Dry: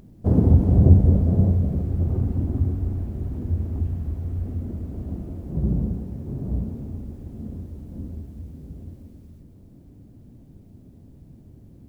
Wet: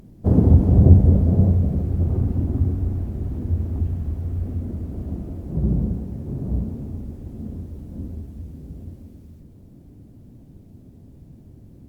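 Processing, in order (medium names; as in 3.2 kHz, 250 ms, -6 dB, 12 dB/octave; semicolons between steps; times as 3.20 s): trim +2 dB; Opus 48 kbps 48 kHz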